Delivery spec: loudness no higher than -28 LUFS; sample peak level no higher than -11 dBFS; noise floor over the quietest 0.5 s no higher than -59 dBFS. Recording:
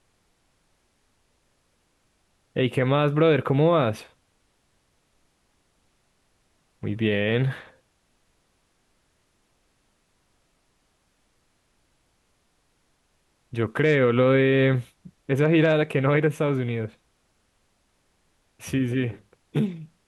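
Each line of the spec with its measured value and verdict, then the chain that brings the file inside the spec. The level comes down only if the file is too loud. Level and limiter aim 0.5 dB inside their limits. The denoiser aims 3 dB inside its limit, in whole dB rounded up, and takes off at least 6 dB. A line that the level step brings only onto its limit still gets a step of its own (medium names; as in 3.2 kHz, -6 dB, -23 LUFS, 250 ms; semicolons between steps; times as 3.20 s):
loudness -23.0 LUFS: fail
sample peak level -8.0 dBFS: fail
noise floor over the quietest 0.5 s -68 dBFS: pass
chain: trim -5.5 dB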